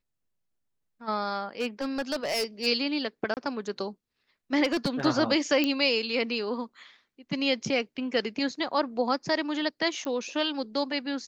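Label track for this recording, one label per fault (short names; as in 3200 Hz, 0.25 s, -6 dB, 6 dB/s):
1.600000	2.670000	clipped -24 dBFS
3.340000	3.370000	gap 28 ms
4.640000	5.060000	clipped -21.5 dBFS
5.640000	5.640000	pop -12 dBFS
10.050000	10.050000	pop -21 dBFS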